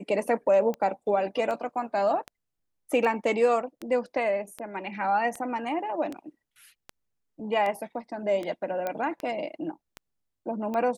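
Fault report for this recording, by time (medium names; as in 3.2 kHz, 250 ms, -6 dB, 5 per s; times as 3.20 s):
tick 78 rpm -21 dBFS
8.87 s: pop -17 dBFS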